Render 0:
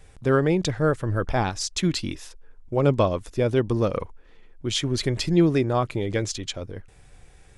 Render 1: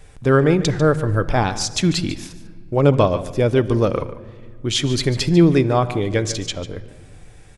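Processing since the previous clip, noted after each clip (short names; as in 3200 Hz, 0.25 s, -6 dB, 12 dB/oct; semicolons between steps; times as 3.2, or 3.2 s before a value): echo 0.146 s -14.5 dB; shoebox room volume 3000 m³, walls mixed, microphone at 0.38 m; gain +5 dB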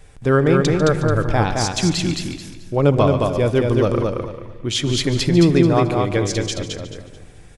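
de-esser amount 35%; on a send: feedback echo 0.218 s, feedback 27%, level -3.5 dB; on the sum: gain -1 dB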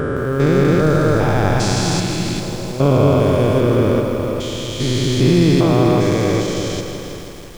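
stepped spectrum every 0.4 s; lo-fi delay 0.162 s, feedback 80%, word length 7-bit, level -9 dB; gain +4 dB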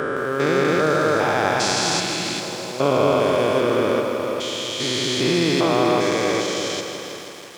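weighting filter A; gain +1 dB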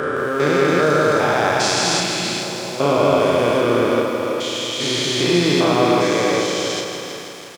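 doubler 34 ms -4 dB; gain +1 dB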